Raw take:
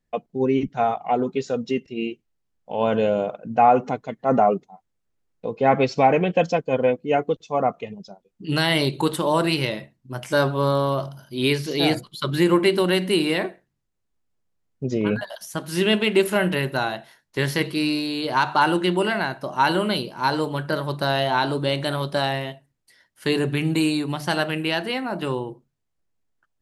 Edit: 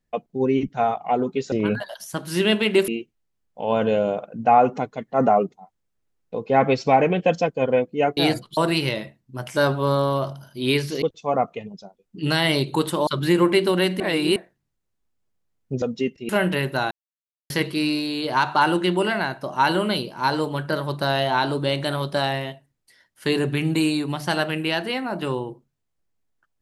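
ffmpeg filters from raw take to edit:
-filter_complex "[0:a]asplit=13[a][b][c][d][e][f][g][h][i][j][k][l][m];[a]atrim=end=1.522[n];[b]atrim=start=14.928:end=16.292[o];[c]atrim=start=1.988:end=7.282[p];[d]atrim=start=11.778:end=12.182[q];[e]atrim=start=9.328:end=11.782[r];[f]atrim=start=7.278:end=9.332[s];[g]atrim=start=12.178:end=13.112[t];[h]atrim=start=13.108:end=13.472,asetpts=PTS-STARTPTS,areverse[u];[i]atrim=start=13.468:end=14.932[v];[j]atrim=start=1.518:end=1.992[w];[k]atrim=start=16.288:end=16.91,asetpts=PTS-STARTPTS,afade=t=out:st=0.618:d=0.004:c=hsin[x];[l]atrim=start=16.91:end=17.5,asetpts=PTS-STARTPTS,volume=0[y];[m]atrim=start=17.5,asetpts=PTS-STARTPTS,afade=t=in:d=0.004:c=hsin[z];[n][o]acrossfade=d=0.004:c1=hsin:c2=hsin[aa];[aa][p]acrossfade=d=0.004:c1=hsin:c2=hsin[ab];[ab][q]acrossfade=d=0.004:c1=hsin:c2=hsin[ac];[ac][r]acrossfade=d=0.004:c1=hsin:c2=hsin[ad];[ad][s]acrossfade=d=0.004:c1=hsin:c2=hsin[ae];[ae][t]acrossfade=d=0.004:c1=hsin:c2=hsin[af];[af][u]acrossfade=d=0.004:c1=hsin:c2=hsin[ag];[ag][v]acrossfade=d=0.004:c1=hsin:c2=hsin[ah];[ah][w]acrossfade=d=0.004:c1=hsin:c2=hsin[ai];[x][y][z]concat=n=3:v=0:a=1[aj];[ai][aj]acrossfade=d=0.004:c1=hsin:c2=hsin"

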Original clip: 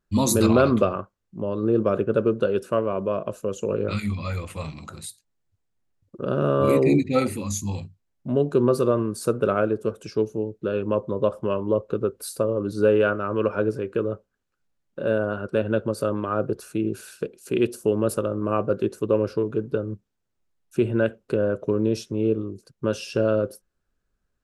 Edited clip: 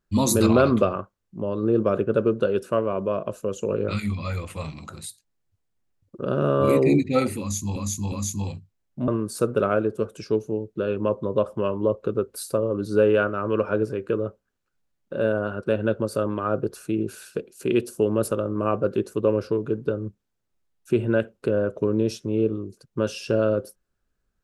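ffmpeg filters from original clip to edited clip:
-filter_complex "[0:a]asplit=4[a][b][c][d];[a]atrim=end=7.762[e];[b]atrim=start=7.398:end=7.762[f];[c]atrim=start=7.398:end=8.362[g];[d]atrim=start=8.938[h];[e][f]acrossfade=d=0.004:c1=hsin:c2=hsin[i];[i][g]acrossfade=d=0.004:c1=hsin:c2=hsin[j];[j][h]acrossfade=d=0.004:c1=hsin:c2=hsin"

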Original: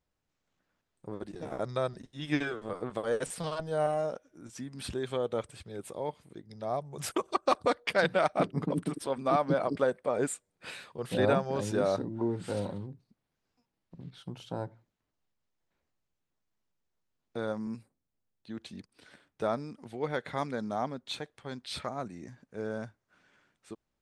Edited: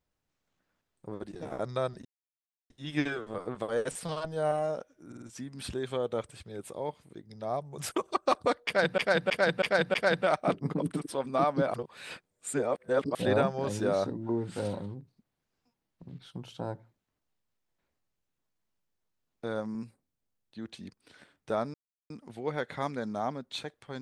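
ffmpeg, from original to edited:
-filter_complex "[0:a]asplit=12[a][b][c][d][e][f][g][h][i][j][k][l];[a]atrim=end=2.05,asetpts=PTS-STARTPTS,afade=t=out:st=2.046:d=0.004:c=hsin,apad=pad_dur=0.65[m];[b]atrim=start=2.05:end=4.472,asetpts=PTS-STARTPTS,afade=t=in:d=0.004:c=hsin[n];[c]atrim=start=4.418:end=4.472[o];[d]atrim=start=4.418:end=4.472[p];[e]atrim=start=4.418:end=8.182[q];[f]atrim=start=7.858:end=8.182[r];[g]atrim=start=7.858:end=8.182[s];[h]atrim=start=7.858:end=8.182[t];[i]atrim=start=7.858:end=9.662[u];[j]atrim=start=9.658:end=11.072,asetpts=PTS-STARTPTS,areverse[v];[k]atrim=start=11.068:end=19.66,asetpts=PTS-STARTPTS,afade=t=out:st=8.588:d=0.004:c=hsin,apad=pad_dur=0.36[w];[l]atrim=start=19.66,asetpts=PTS-STARTPTS,afade=t=in:d=0.004:c=hsin[x];[m][n]concat=n=2:v=0:a=1[y];[y][o]acrossfade=d=0.004:c1=hsin:c2=hsin[z];[z][p]acrossfade=d=0.004:c1=hsin:c2=hsin[aa];[aa][q]acrossfade=d=0.004:c1=hsin:c2=hsin[ab];[ab][r]acrossfade=d=0.004:c1=hsin:c2=hsin[ac];[ac][s]acrossfade=d=0.004:c1=hsin:c2=hsin[ad];[ad][t]acrossfade=d=0.004:c1=hsin:c2=hsin[ae];[ae][u]acrossfade=d=0.004:c1=hsin:c2=hsin[af];[af][v]acrossfade=d=0.004:c1=hsin:c2=hsin[ag];[w][x]concat=n=2:v=0:a=1[ah];[ag][ah]acrossfade=d=0.004:c1=hsin:c2=hsin"

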